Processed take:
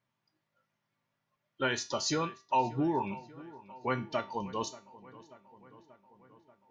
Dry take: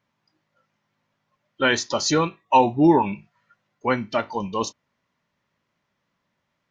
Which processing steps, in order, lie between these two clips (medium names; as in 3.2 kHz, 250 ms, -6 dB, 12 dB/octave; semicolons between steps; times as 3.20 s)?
compression, threshold -17 dBFS, peak gain reduction 7 dB; feedback comb 130 Hz, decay 0.32 s, harmonics odd, mix 70%; on a send: filtered feedback delay 585 ms, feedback 66%, low-pass 3.2 kHz, level -19 dB